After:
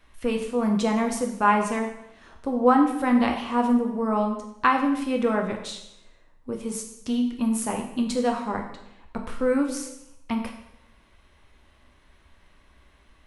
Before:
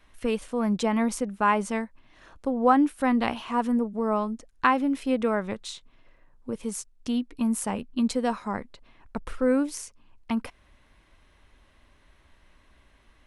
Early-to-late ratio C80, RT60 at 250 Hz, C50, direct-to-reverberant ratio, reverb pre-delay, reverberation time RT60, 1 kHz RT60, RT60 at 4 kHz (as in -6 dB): 9.5 dB, 0.80 s, 7.0 dB, 2.0 dB, 4 ms, 0.85 s, 0.80 s, 0.75 s